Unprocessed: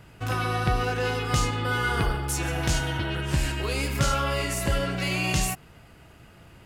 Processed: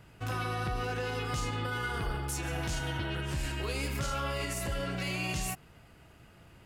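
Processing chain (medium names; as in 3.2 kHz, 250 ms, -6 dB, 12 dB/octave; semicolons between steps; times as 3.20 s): peak limiter -19 dBFS, peak gain reduction 6.5 dB; trim -5.5 dB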